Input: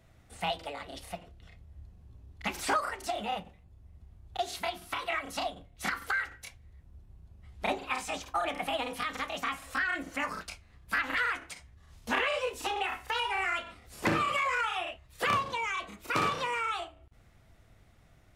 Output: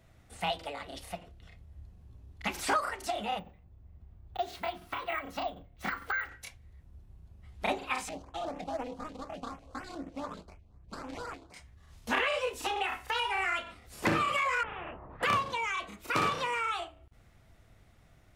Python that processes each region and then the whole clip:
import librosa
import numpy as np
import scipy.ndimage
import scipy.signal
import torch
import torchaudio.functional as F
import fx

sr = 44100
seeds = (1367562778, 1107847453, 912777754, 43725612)

y = fx.chain(x, sr, fx.lowpass(hz=2000.0, slope=6),
    fx.resample_bad(factor=2, down='none', up='hold'), at=(3.39, 6.29))
y = fx.chain(y, sr, fx.median_filter(points=25),
    fx.lowpass(hz=7300.0, slope=12),
    fx.filter_lfo_notch(shape='saw_up', hz=4.0, low_hz=990.0, high_hz=5000.0, q=0.85), at=(8.09, 11.54))
y = fx.chain(y, sr, fx.lowpass(hz=1000.0, slope=24),
    fx.spectral_comp(ratio=4.0), at=(14.63, 15.23))